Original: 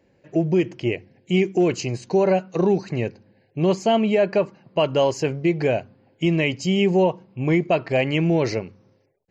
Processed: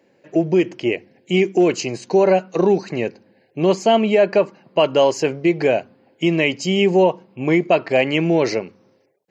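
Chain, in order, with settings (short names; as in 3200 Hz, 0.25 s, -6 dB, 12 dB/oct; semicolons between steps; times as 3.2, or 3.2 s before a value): HPF 220 Hz 12 dB/oct; gain +4.5 dB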